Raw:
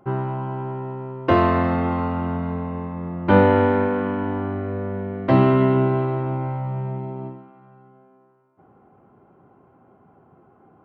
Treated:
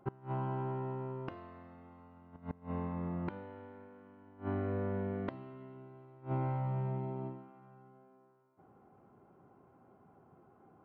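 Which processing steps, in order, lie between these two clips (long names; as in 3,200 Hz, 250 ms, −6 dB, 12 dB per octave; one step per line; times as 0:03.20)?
gate with flip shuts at −16 dBFS, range −25 dB
level −8.5 dB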